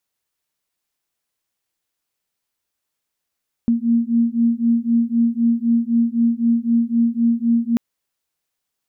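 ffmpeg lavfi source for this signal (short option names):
-f lavfi -i "aevalsrc='0.133*(sin(2*PI*231*t)+sin(2*PI*234.9*t))':d=4.09:s=44100"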